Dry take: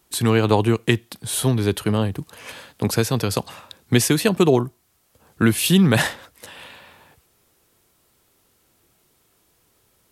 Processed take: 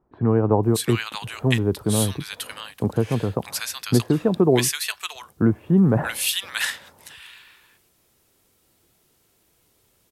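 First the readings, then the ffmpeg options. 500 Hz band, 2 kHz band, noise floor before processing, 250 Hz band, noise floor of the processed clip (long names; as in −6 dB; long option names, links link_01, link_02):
−1.0 dB, −2.5 dB, −63 dBFS, −1.0 dB, −64 dBFS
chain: -filter_complex "[0:a]acrossover=split=1200[link_01][link_02];[link_02]adelay=630[link_03];[link_01][link_03]amix=inputs=2:normalize=0,volume=-1dB"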